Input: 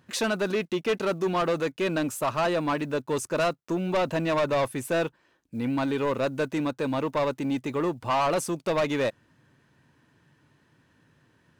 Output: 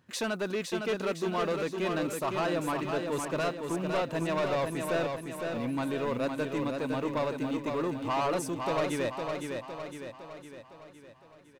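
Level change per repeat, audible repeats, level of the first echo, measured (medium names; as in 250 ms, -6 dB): -5.5 dB, 6, -5.0 dB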